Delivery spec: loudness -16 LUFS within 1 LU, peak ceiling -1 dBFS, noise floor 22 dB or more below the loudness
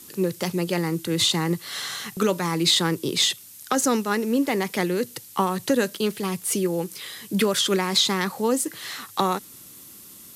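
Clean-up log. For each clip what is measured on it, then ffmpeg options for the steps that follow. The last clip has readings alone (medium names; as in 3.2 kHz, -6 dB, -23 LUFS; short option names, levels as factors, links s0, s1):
noise floor -45 dBFS; noise floor target -46 dBFS; loudness -23.5 LUFS; peak level -8.5 dBFS; loudness target -16.0 LUFS
-> -af "afftdn=nr=6:nf=-45"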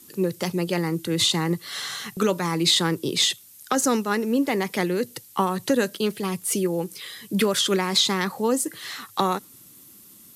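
noise floor -49 dBFS; loudness -23.5 LUFS; peak level -9.0 dBFS; loudness target -16.0 LUFS
-> -af "volume=2.37"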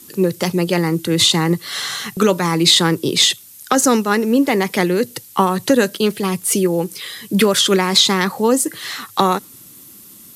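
loudness -16.5 LUFS; peak level -1.5 dBFS; noise floor -42 dBFS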